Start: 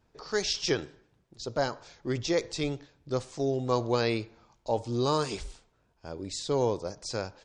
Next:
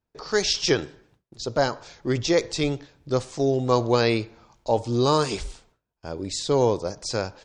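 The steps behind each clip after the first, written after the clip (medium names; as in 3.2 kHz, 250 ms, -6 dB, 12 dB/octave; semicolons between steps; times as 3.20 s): gate with hold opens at -57 dBFS; trim +6.5 dB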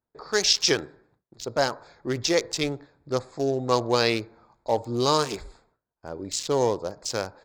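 local Wiener filter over 15 samples; tilt EQ +2 dB/octave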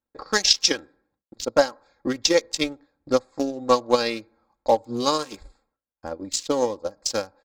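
comb 3.7 ms, depth 64%; transient shaper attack +10 dB, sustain -7 dB; trim -4 dB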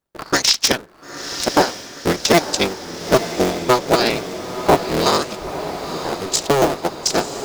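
cycle switcher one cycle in 3, inverted; peak limiter -9 dBFS, peak gain reduction 7 dB; echo that smears into a reverb 941 ms, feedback 55%, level -10 dB; trim +7 dB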